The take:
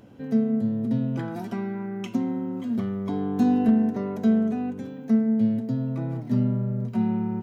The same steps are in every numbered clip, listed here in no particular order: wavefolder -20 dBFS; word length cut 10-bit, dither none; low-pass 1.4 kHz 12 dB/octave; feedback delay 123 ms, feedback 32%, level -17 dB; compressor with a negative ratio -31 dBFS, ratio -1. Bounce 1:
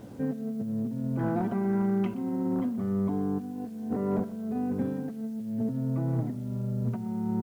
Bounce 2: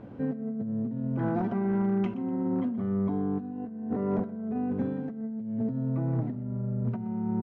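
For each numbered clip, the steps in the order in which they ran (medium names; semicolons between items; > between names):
compressor with a negative ratio > wavefolder > low-pass > word length cut > feedback delay; word length cut > compressor with a negative ratio > feedback delay > wavefolder > low-pass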